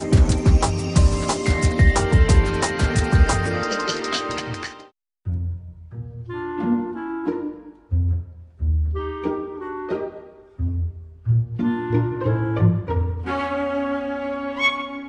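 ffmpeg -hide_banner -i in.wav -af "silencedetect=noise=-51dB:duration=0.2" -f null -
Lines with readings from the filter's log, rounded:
silence_start: 4.90
silence_end: 5.25 | silence_duration: 0.35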